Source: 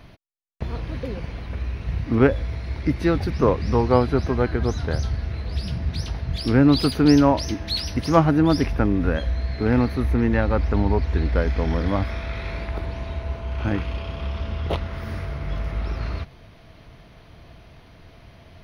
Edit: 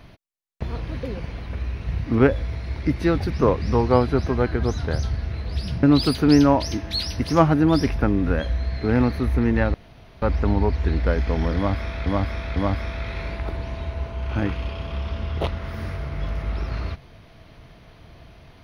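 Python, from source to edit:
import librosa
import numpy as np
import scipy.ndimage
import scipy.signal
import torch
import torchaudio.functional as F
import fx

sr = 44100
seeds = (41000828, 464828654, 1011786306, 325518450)

y = fx.edit(x, sr, fx.cut(start_s=5.83, length_s=0.77),
    fx.insert_room_tone(at_s=10.51, length_s=0.48),
    fx.repeat(start_s=11.85, length_s=0.5, count=3), tone=tone)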